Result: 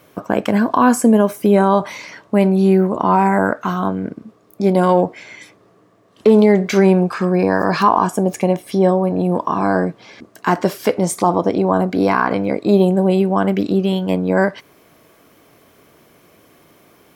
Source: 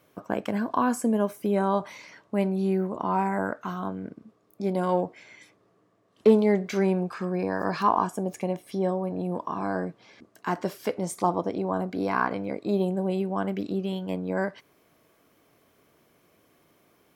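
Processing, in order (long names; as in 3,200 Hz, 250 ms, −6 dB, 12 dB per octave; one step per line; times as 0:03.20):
boost into a limiter +14 dB
level −1.5 dB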